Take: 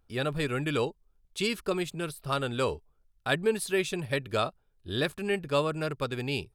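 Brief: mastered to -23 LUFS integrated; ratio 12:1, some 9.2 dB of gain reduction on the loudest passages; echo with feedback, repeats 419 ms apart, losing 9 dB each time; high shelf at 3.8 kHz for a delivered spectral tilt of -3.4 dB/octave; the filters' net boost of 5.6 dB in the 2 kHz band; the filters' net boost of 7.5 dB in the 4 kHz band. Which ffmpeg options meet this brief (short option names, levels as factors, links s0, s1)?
-af "equalizer=f=2000:t=o:g=4,highshelf=f=3800:g=8.5,equalizer=f=4000:t=o:g=3,acompressor=threshold=0.0501:ratio=12,aecho=1:1:419|838|1257|1676:0.355|0.124|0.0435|0.0152,volume=2.66"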